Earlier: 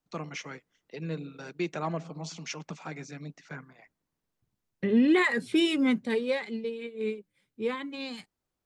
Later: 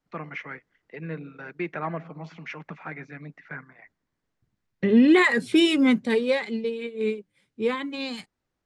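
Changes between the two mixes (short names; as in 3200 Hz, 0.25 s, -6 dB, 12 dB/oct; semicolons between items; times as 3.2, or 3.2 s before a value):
first voice: add synth low-pass 1900 Hz, resonance Q 2.6; second voice +5.5 dB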